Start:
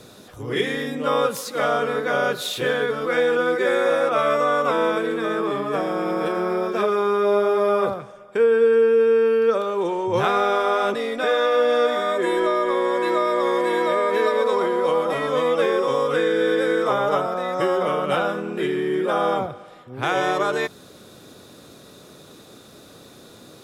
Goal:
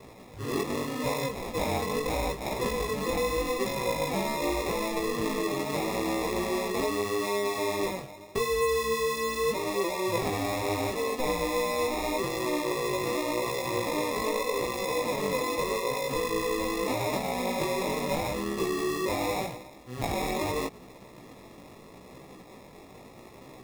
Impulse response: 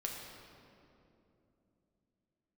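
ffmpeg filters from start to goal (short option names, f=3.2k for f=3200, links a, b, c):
-af "acrusher=samples=29:mix=1:aa=0.000001,acompressor=threshold=-23dB:ratio=6,flanger=delay=15:depth=6.4:speed=0.81"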